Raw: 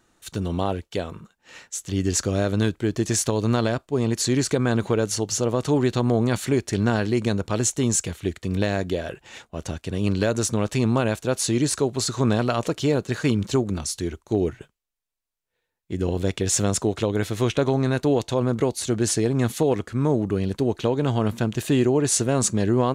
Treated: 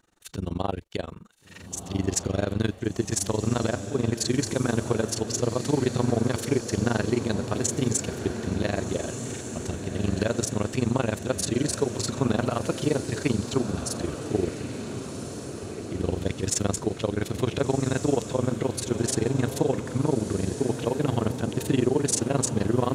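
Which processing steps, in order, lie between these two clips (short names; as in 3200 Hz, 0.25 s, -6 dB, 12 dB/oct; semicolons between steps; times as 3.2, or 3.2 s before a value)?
AM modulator 23 Hz, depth 95%; diffused feedback echo 1.452 s, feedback 61%, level -8.5 dB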